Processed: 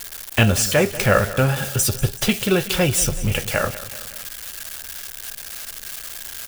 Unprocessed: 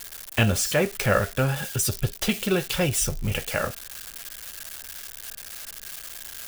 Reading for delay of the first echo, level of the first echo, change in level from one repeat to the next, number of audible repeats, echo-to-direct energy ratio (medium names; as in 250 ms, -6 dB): 189 ms, -16.0 dB, -5.0 dB, 3, -14.5 dB